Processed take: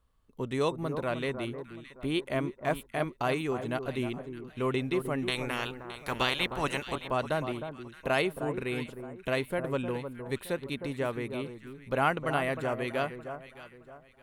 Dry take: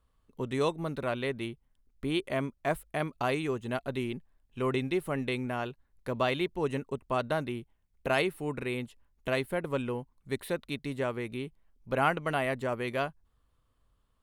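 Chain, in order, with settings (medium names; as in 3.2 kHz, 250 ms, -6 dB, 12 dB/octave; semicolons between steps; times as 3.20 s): 5.27–6.94 s: spectral peaks clipped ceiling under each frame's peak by 21 dB; on a send: echo whose repeats swap between lows and highs 309 ms, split 1.4 kHz, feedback 55%, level -8.5 dB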